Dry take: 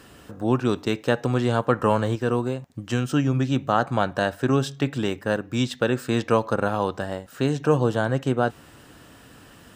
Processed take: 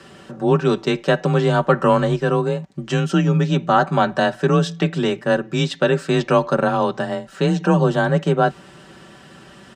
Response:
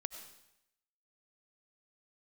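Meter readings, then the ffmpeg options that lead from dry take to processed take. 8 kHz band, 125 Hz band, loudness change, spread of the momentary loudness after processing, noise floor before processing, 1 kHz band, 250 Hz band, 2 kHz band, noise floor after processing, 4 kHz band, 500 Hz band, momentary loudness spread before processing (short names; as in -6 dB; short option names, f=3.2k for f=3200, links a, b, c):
+2.0 dB, +5.0 dB, +5.0 dB, 5 LU, -49 dBFS, +6.0 dB, +4.0 dB, +5.5 dB, -45 dBFS, +5.5 dB, +5.5 dB, 5 LU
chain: -af "afreqshift=28,lowpass=7k,aecho=1:1:5.2:0.62,volume=4dB"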